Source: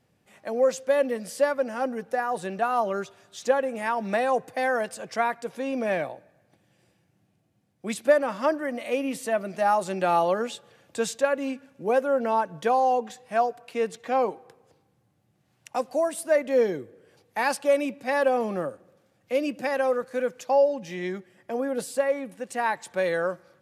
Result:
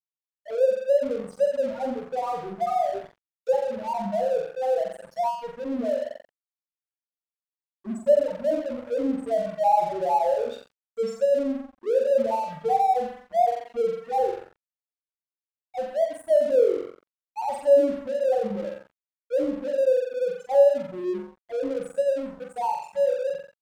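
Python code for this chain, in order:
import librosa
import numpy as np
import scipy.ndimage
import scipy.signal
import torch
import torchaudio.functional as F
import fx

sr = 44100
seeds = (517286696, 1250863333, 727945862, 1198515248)

y = fx.spec_topn(x, sr, count=1)
y = fx.room_flutter(y, sr, wall_m=7.6, rt60_s=0.67)
y = np.sign(y) * np.maximum(np.abs(y) - 10.0 ** (-47.5 / 20.0), 0.0)
y = y * 10.0 ** (6.5 / 20.0)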